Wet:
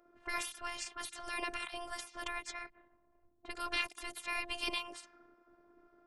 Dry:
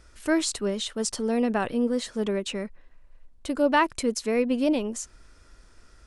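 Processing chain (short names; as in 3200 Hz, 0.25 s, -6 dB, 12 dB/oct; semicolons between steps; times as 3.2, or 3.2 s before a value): low-pass opened by the level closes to 570 Hz, open at -22.5 dBFS; spectral gate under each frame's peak -20 dB weak; robotiser 348 Hz; gain +5 dB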